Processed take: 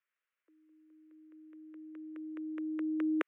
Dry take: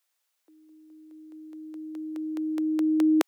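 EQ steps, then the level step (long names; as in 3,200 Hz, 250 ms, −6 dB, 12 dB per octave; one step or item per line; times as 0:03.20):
three-way crossover with the lows and the highs turned down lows −21 dB, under 380 Hz, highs −23 dB, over 3,500 Hz
high-shelf EQ 3,400 Hz −8 dB
phaser with its sweep stopped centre 1,900 Hz, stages 4
0.0 dB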